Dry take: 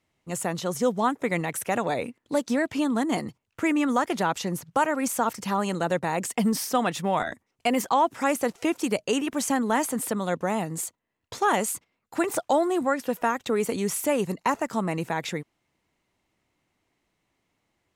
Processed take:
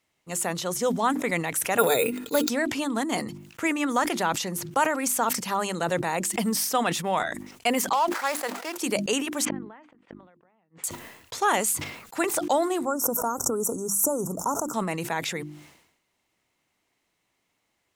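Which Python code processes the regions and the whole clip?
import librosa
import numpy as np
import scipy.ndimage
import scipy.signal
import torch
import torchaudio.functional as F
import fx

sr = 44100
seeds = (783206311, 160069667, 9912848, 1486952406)

y = fx.chain(x, sr, fx.peak_eq(hz=6700.0, db=7.5, octaves=1.7),
    fx.small_body(hz=(450.0, 1400.0, 2500.0, 3700.0), ring_ms=55, db=14),
    fx.resample_bad(factor=4, down='filtered', up='hold'), at=(1.78, 2.49))
y = fx.chain(y, sr, fx.median_filter(points=15),
    fx.highpass(hz=670.0, slope=12), at=(7.93, 8.76))
y = fx.chain(y, sr, fx.lowpass(hz=2700.0, slope=24),
    fx.gate_flip(shuts_db=-21.0, range_db=-39), at=(9.45, 10.84))
y = fx.chain(y, sr, fx.cheby1_bandstop(low_hz=1400.0, high_hz=5600.0, order=5),
    fx.peak_eq(hz=1200.0, db=-3.0, octaves=2.2),
    fx.pre_swell(db_per_s=69.0), at=(12.85, 14.74))
y = fx.tilt_eq(y, sr, slope=1.5)
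y = fx.hum_notches(y, sr, base_hz=50, count=7)
y = fx.sustainer(y, sr, db_per_s=71.0)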